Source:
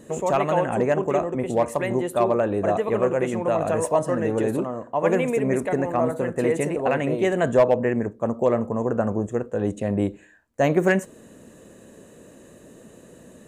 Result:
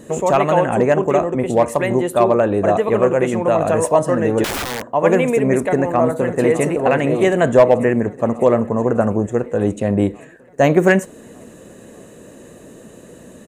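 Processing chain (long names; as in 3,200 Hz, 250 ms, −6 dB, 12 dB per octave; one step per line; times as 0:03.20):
0:04.44–0:04.90: wrap-around overflow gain 25 dB
0:05.59–0:06.76: delay throw 600 ms, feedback 75%, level −15 dB
level +6.5 dB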